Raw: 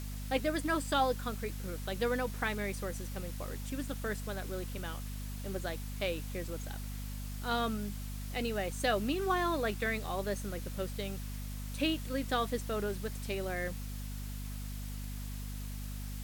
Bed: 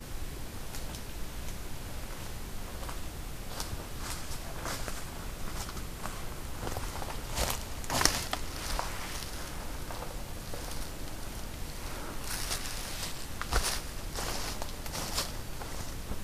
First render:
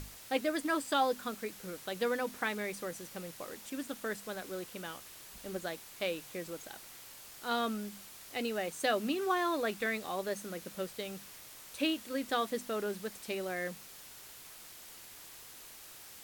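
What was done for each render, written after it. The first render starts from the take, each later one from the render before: hum notches 50/100/150/200/250 Hz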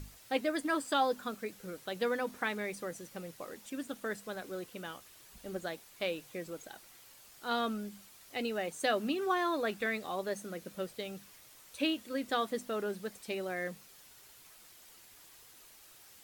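noise reduction 7 dB, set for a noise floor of -52 dBFS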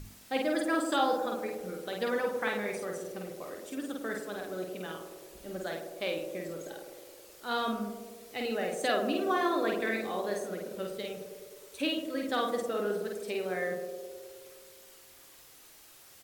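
doubling 49 ms -3 dB; band-passed feedback delay 105 ms, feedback 78%, band-pass 440 Hz, level -5 dB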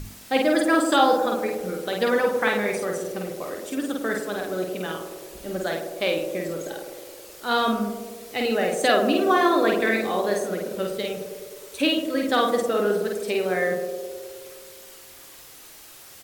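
trim +9.5 dB

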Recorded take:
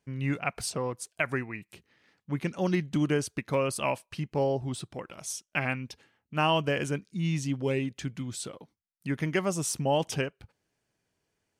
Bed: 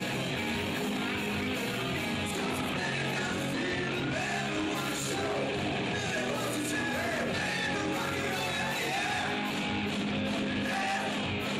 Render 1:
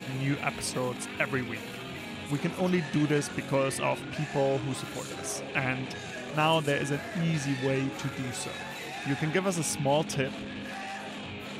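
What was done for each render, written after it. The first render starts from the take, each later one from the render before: add bed -7 dB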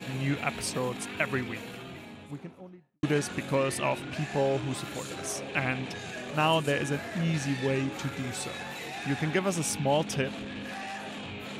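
1.31–3.03 s: studio fade out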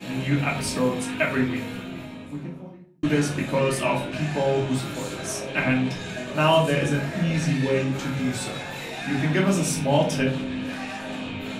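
simulated room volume 280 m³, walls furnished, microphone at 2.7 m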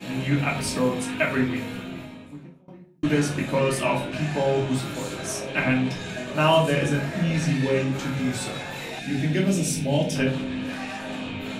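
1.93–2.68 s: fade out, to -22.5 dB; 8.99–10.16 s: peaking EQ 1.1 kHz -14.5 dB 1 oct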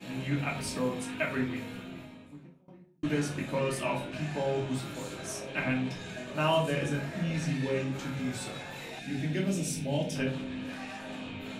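trim -8 dB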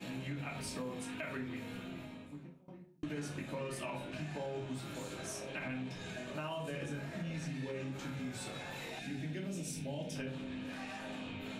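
peak limiter -23 dBFS, peak gain reduction 8.5 dB; compression 2.5:1, threshold -42 dBFS, peak gain reduction 9.5 dB

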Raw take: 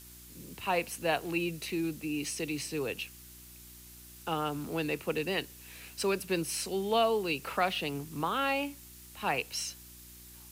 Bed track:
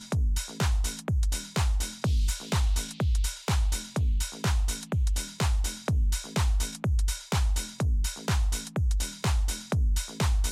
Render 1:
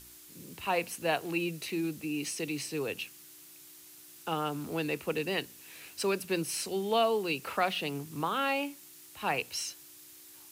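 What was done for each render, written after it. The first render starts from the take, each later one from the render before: de-hum 60 Hz, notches 4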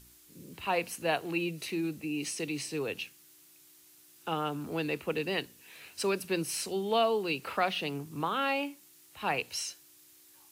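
noise print and reduce 6 dB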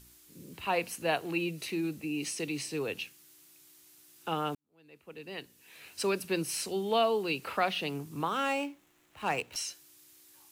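4.55–5.92 s: fade in quadratic; 8.28–9.56 s: median filter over 9 samples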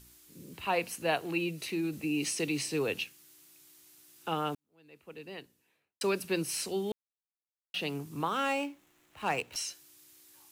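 1.93–3.04 s: gain +3 dB; 5.10–6.01 s: studio fade out; 6.92–7.74 s: mute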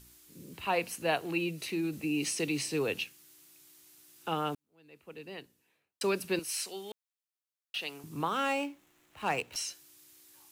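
6.39–8.04 s: high-pass 1.1 kHz 6 dB/octave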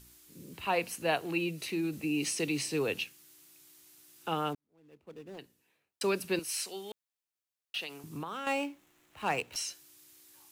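4.53–5.39 s: median filter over 25 samples; 7.82–8.47 s: compression, threshold -35 dBFS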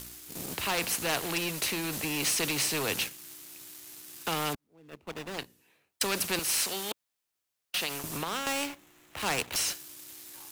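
waveshaping leveller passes 2; spectrum-flattening compressor 2:1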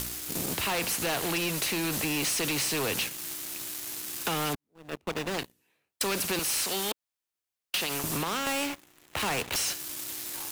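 waveshaping leveller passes 3; compression, threshold -28 dBFS, peak gain reduction 8 dB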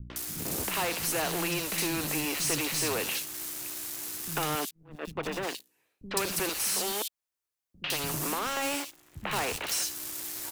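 three bands offset in time lows, mids, highs 100/160 ms, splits 220/3200 Hz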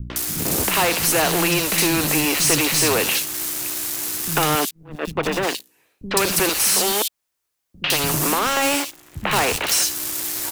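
trim +11.5 dB; peak limiter -3 dBFS, peak gain reduction 2 dB

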